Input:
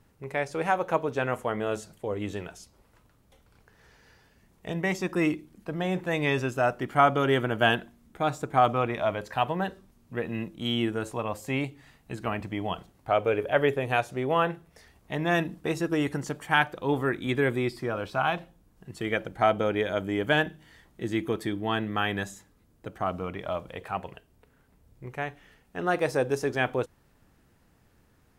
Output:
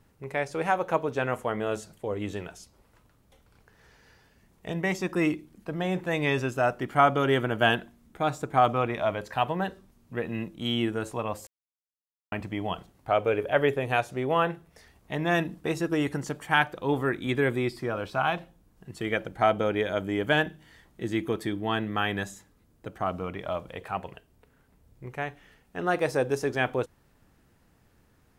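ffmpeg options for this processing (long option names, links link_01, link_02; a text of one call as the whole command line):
ffmpeg -i in.wav -filter_complex "[0:a]asplit=3[link_01][link_02][link_03];[link_01]atrim=end=11.47,asetpts=PTS-STARTPTS,afade=type=out:start_time=11.466:duration=0.004:curve=hsin[link_04];[link_02]atrim=start=11.47:end=12.32,asetpts=PTS-STARTPTS,volume=0[link_05];[link_03]atrim=start=12.32,asetpts=PTS-STARTPTS,afade=type=in:duration=0.004:curve=hsin[link_06];[link_04][link_05][link_06]concat=n=3:v=0:a=1" out.wav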